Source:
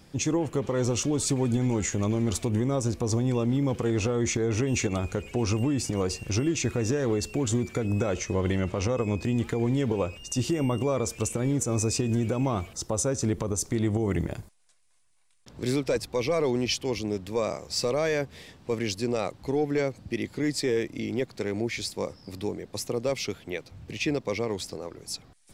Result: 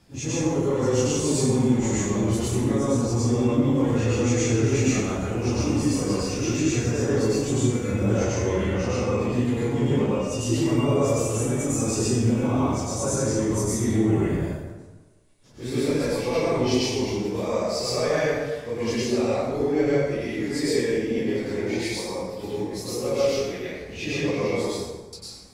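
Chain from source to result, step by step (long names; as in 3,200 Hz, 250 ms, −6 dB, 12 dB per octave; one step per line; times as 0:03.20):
random phases in long frames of 100 ms
0:24.73–0:25.13: inverse Chebyshev low-pass filter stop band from 610 Hz, stop band 70 dB
dense smooth reverb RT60 1.3 s, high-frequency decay 0.6×, pre-delay 85 ms, DRR −7 dB
level −4 dB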